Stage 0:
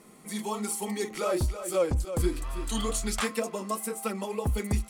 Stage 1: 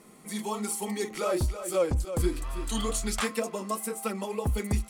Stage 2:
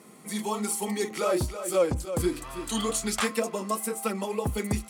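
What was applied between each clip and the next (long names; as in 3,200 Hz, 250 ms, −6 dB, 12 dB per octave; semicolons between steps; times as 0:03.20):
no processing that can be heard
high-pass filter 100 Hz 12 dB per octave; level +2.5 dB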